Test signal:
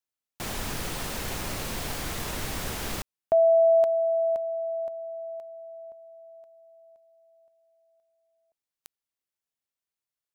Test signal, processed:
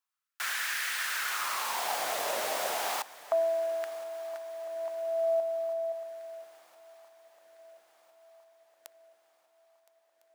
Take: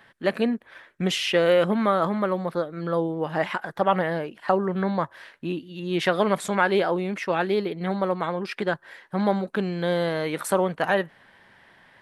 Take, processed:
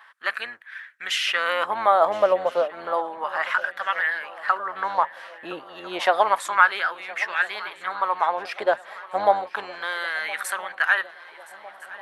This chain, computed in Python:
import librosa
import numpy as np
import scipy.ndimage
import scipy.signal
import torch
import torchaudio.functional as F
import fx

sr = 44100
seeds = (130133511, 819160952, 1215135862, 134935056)

p1 = fx.octave_divider(x, sr, octaves=1, level_db=-1.0)
p2 = fx.filter_lfo_highpass(p1, sr, shape='sine', hz=0.31, low_hz=610.0, high_hz=1700.0, q=3.3)
y = p2 + fx.echo_swing(p2, sr, ms=1355, ratio=3, feedback_pct=52, wet_db=-20.0, dry=0)